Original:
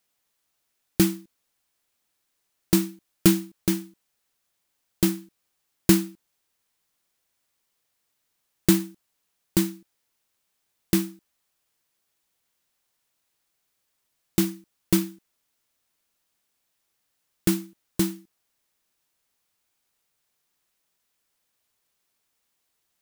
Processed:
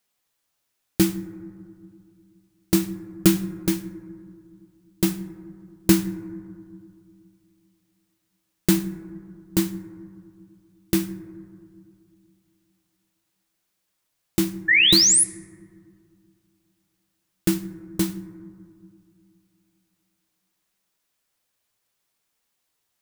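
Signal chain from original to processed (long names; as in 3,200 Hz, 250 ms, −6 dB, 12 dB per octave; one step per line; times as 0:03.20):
sound drawn into the spectrogram rise, 0:14.68–0:15.24, 1,700–11,000 Hz −16 dBFS
flanger 0.58 Hz, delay 4.2 ms, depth 6.4 ms, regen −51%
on a send: convolution reverb RT60 2.3 s, pre-delay 4 ms, DRR 12 dB
on the sum: level +4 dB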